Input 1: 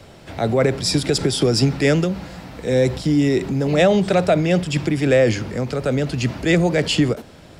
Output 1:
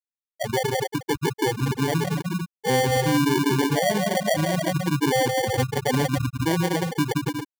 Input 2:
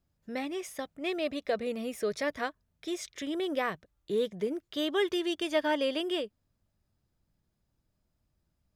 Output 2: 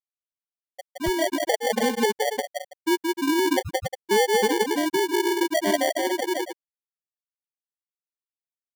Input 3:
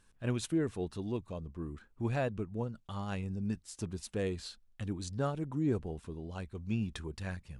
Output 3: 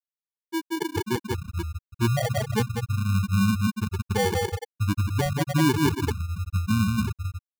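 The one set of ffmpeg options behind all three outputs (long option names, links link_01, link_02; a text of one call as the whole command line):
ffmpeg -i in.wav -filter_complex "[0:a]lowshelf=frequency=460:gain=-3.5,asplit=2[link_01][link_02];[link_02]aecho=0:1:170|280.5|352.3|399|429.4:0.631|0.398|0.251|0.158|0.1[link_03];[link_01][link_03]amix=inputs=2:normalize=0,acrusher=bits=7:mix=0:aa=0.000001,dynaudnorm=framelen=110:gausssize=17:maxgain=16dB,equalizer=frequency=82:width_type=o:width=0.64:gain=4,alimiter=limit=-12.5dB:level=0:latency=1:release=207,afftfilt=real='re*gte(hypot(re,im),0.447)':imag='im*gte(hypot(re,im),0.447)':win_size=1024:overlap=0.75,acrusher=samples=34:mix=1:aa=0.000001,volume=1dB" out.wav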